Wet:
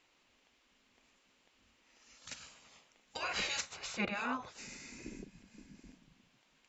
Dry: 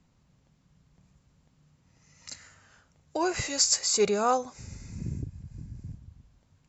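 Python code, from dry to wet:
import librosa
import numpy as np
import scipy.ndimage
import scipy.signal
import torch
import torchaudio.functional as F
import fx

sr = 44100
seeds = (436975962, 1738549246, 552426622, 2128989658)

y = fx.peak_eq(x, sr, hz=2700.0, db=11.5, octaves=1.4)
y = fx.env_lowpass_down(y, sr, base_hz=1500.0, full_db=-18.5)
y = fx.spec_gate(y, sr, threshold_db=-10, keep='weak')
y = y * 10.0 ** (-1.5 / 20.0)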